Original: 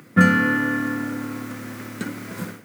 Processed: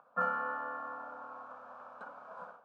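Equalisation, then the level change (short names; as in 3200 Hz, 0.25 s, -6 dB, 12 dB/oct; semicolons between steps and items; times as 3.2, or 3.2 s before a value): Butterworth band-pass 910 Hz, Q 1; fixed phaser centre 830 Hz, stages 4; -3.0 dB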